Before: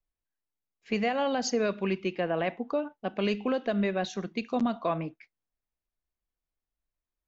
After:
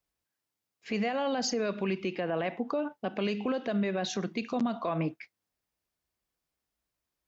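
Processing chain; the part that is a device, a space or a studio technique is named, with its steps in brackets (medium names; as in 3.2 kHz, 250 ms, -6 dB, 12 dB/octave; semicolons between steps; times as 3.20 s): broadcast voice chain (high-pass 77 Hz 12 dB/octave; de-esser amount 60%; compression, threshold -30 dBFS, peak gain reduction 7.5 dB; peaking EQ 5 kHz +3 dB 0.23 oct; peak limiter -29 dBFS, peak gain reduction 8 dB); trim +7 dB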